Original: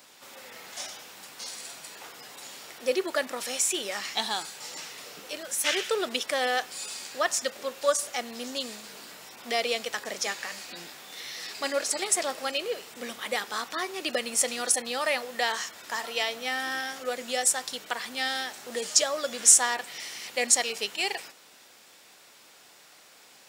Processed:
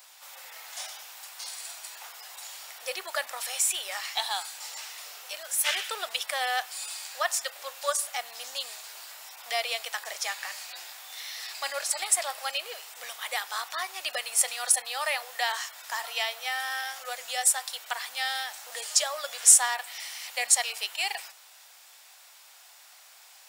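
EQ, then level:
Chebyshev high-pass filter 720 Hz, order 3
dynamic equaliser 6,200 Hz, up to −5 dB, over −44 dBFS, Q 2.2
high-shelf EQ 10,000 Hz +7.5 dB
0.0 dB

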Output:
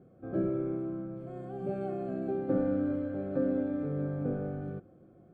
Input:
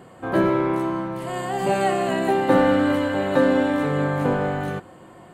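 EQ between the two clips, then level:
moving average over 46 samples
−8.5 dB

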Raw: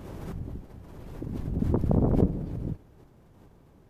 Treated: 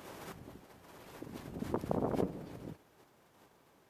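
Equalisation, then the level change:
high-pass filter 1,200 Hz 6 dB per octave
+3.0 dB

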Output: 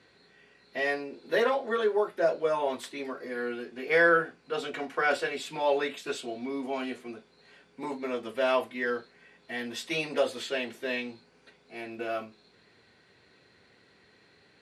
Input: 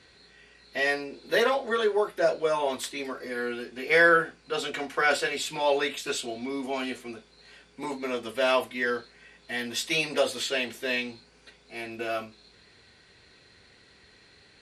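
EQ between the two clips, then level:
high-pass filter 120 Hz 12 dB per octave
high-shelf EQ 2,800 Hz −9.5 dB
−1.0 dB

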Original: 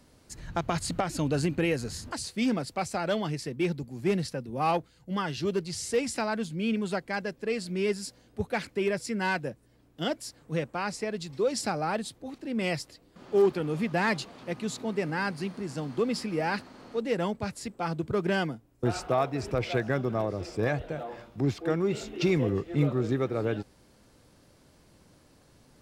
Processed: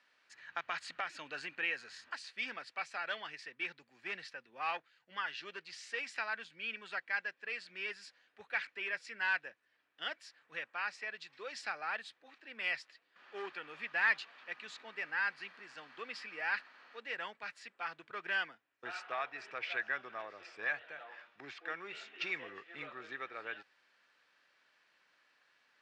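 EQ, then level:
four-pole ladder band-pass 2,300 Hz, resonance 45%
spectral tilt −3 dB per octave
notch filter 2,100 Hz, Q 9.6
+12.0 dB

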